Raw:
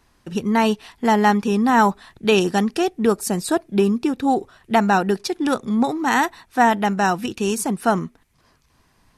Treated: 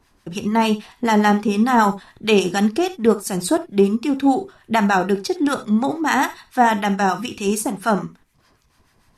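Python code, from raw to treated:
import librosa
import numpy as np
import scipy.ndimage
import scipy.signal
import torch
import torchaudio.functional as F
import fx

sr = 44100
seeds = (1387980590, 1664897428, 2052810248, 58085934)

y = fx.harmonic_tremolo(x, sr, hz=6.8, depth_pct=70, crossover_hz=970.0)
y = fx.rev_gated(y, sr, seeds[0], gate_ms=100, shape='flat', drr_db=10.5)
y = y * 10.0 ** (3.5 / 20.0)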